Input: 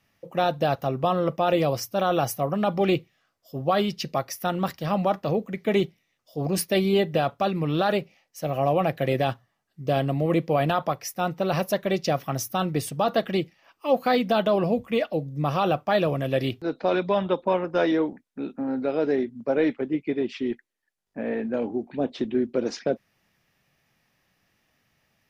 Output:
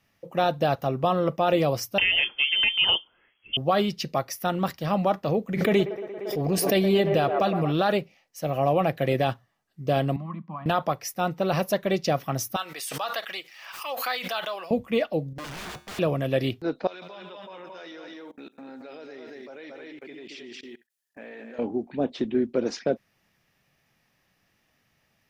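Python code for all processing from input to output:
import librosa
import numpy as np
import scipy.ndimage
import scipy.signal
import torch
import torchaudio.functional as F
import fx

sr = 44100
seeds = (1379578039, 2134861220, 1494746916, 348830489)

y = fx.chain(x, sr, fx.freq_invert(carrier_hz=3300),
    fx.band_squash(depth_pct=70), at=(1.98, 3.57))
y = fx.chain(y, sr, fx.echo_wet_bandpass(ms=116, feedback_pct=74, hz=780.0, wet_db=-8.0),
    fx.pre_swell(db_per_s=46.0), at=(5.49, 7.72))
y = fx.chain(y, sr, fx.double_bandpass(hz=460.0, octaves=2.4),
    fx.band_squash(depth_pct=100), at=(10.16, 10.66))
y = fx.chain(y, sr, fx.highpass(hz=1200.0, slope=12),
    fx.quant_companded(bits=8),
    fx.pre_swell(db_per_s=51.0), at=(12.56, 14.71))
y = fx.chain(y, sr, fx.overflow_wrap(gain_db=24.0),
    fx.high_shelf(hz=6200.0, db=-11.0),
    fx.comb_fb(f0_hz=71.0, decay_s=0.52, harmonics='odd', damping=0.0, mix_pct=60), at=(15.33, 15.99))
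y = fx.chain(y, sr, fx.tilt_eq(slope=4.0),
    fx.echo_multitap(ms=(146, 224, 290), db=(-16.5, -6.0, -19.5)),
    fx.level_steps(step_db=21), at=(16.87, 21.59))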